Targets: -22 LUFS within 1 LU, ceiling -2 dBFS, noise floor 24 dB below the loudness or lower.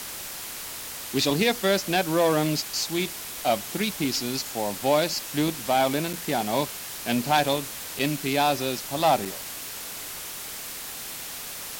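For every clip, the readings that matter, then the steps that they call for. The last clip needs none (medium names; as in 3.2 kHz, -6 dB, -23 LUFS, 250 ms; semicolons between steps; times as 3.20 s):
dropouts 3; longest dropout 5.8 ms; noise floor -37 dBFS; noise floor target -50 dBFS; loudness -26.0 LUFS; peak level -8.5 dBFS; loudness target -22.0 LUFS
-> interpolate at 6.13/7.99/9.25 s, 5.8 ms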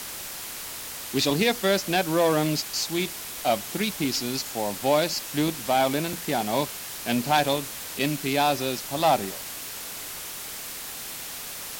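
dropouts 0; noise floor -37 dBFS; noise floor target -50 dBFS
-> noise reduction 13 dB, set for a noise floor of -37 dBFS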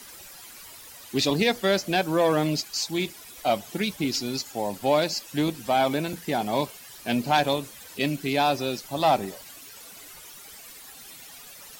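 noise floor -46 dBFS; noise floor target -50 dBFS
-> noise reduction 6 dB, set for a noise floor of -46 dBFS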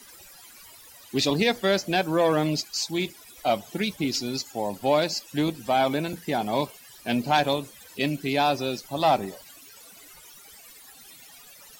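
noise floor -49 dBFS; noise floor target -50 dBFS
-> noise reduction 6 dB, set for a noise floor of -49 dBFS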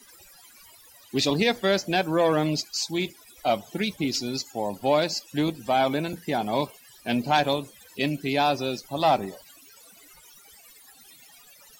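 noise floor -53 dBFS; loudness -25.5 LUFS; peak level -9.0 dBFS; loudness target -22.0 LUFS
-> trim +3.5 dB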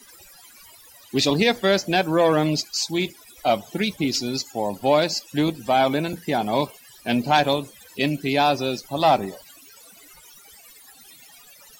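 loudness -22.0 LUFS; peak level -5.5 dBFS; noise floor -49 dBFS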